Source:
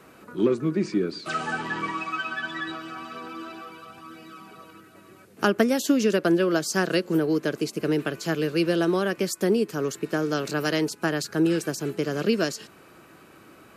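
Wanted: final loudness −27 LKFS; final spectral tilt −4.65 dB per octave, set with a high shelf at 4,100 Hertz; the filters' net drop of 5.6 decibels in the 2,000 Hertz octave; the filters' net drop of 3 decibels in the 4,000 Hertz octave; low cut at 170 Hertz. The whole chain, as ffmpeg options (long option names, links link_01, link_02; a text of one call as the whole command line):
ffmpeg -i in.wav -af "highpass=170,equalizer=frequency=2000:width_type=o:gain=-8,equalizer=frequency=4000:width_type=o:gain=-5.5,highshelf=frequency=4100:gain=6,volume=-0.5dB" out.wav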